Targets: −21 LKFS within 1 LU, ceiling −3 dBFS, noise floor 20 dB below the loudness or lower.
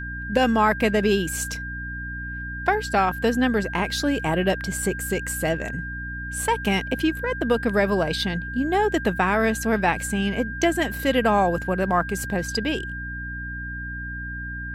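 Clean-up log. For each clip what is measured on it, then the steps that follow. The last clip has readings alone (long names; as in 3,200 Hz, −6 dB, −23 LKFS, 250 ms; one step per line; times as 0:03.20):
mains hum 60 Hz; hum harmonics up to 300 Hz; level of the hum −32 dBFS; interfering tone 1,600 Hz; level of the tone −32 dBFS; integrated loudness −24.0 LKFS; sample peak −6.0 dBFS; target loudness −21.0 LKFS
→ mains-hum notches 60/120/180/240/300 Hz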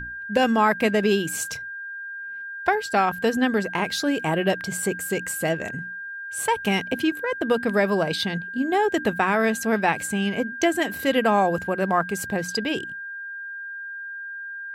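mains hum none found; interfering tone 1,600 Hz; level of the tone −32 dBFS
→ notch filter 1,600 Hz, Q 30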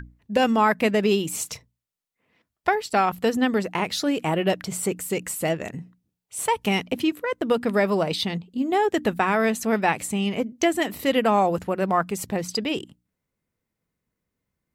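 interfering tone none found; integrated loudness −24.0 LKFS; sample peak −6.5 dBFS; target loudness −21.0 LKFS
→ level +3 dB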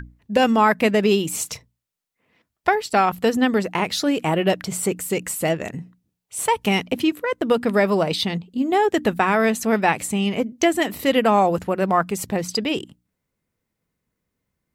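integrated loudness −21.0 LKFS; sample peak −3.5 dBFS; background noise floor −80 dBFS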